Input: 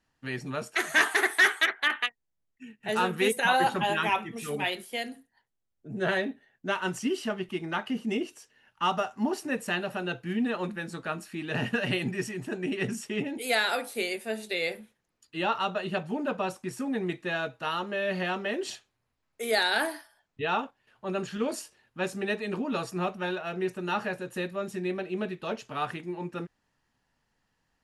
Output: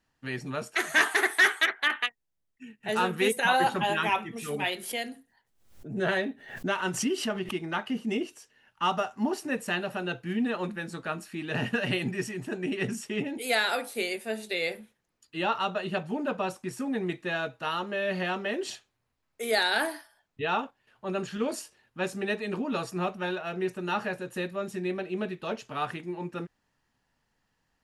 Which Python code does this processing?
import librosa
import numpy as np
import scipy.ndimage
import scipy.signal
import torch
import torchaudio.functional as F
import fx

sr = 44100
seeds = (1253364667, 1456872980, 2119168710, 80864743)

y = fx.pre_swell(x, sr, db_per_s=92.0, at=(4.78, 7.55))